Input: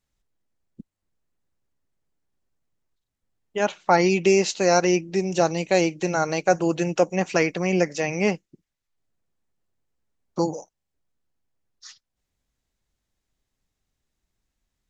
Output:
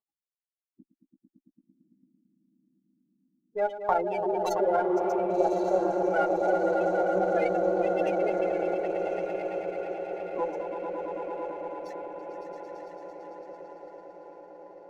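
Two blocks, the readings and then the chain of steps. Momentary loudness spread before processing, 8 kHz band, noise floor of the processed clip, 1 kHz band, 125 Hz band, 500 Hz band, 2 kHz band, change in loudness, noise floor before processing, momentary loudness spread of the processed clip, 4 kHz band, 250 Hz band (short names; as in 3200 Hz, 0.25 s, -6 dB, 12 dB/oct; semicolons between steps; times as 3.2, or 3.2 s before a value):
8 LU, n/a, under -85 dBFS, -1.5 dB, -15.0 dB, -2.0 dB, -9.5 dB, -6.0 dB, -82 dBFS, 18 LU, under -15 dB, -7.0 dB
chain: compressor 6:1, threshold -24 dBFS, peak gain reduction 11.5 dB; notch 5000 Hz, Q 6.9; chorus voices 4, 0.26 Hz, delay 19 ms, depth 3.1 ms; dynamic EQ 2100 Hz, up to -3 dB, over -46 dBFS, Q 1.1; swelling echo 0.112 s, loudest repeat 5, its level -6.5 dB; spectral gate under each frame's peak -15 dB strong; HPF 590 Hz 12 dB/oct; diffused feedback echo 1.136 s, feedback 63%, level -7 dB; low-pass opened by the level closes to 990 Hz, open at -33.5 dBFS; running maximum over 3 samples; gain +8 dB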